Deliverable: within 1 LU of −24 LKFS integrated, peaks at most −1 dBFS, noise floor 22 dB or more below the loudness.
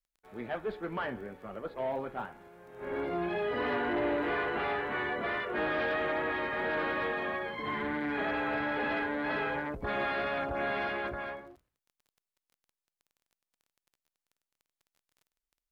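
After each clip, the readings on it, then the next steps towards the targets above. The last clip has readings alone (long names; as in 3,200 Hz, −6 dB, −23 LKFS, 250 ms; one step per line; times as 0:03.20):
crackle rate 20 per second; integrated loudness −33.0 LKFS; sample peak −21.5 dBFS; target loudness −24.0 LKFS
→ click removal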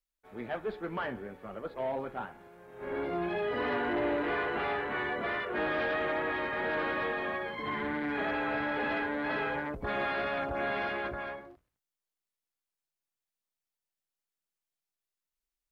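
crackle rate 0.064 per second; integrated loudness −33.0 LKFS; sample peak −21.5 dBFS; target loudness −24.0 LKFS
→ level +9 dB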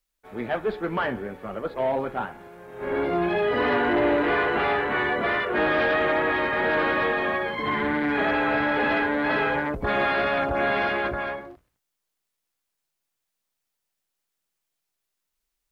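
integrated loudness −24.0 LKFS; sample peak −12.5 dBFS; background noise floor −82 dBFS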